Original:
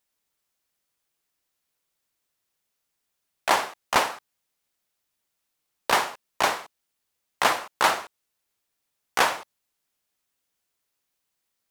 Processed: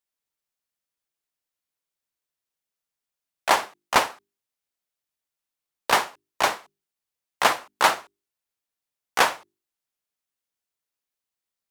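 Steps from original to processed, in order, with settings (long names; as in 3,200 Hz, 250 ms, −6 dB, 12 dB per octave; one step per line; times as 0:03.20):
mains-hum notches 50/100/150/200/250/300/350/400 Hz
expander for the loud parts 1.5 to 1, over −40 dBFS
level +3 dB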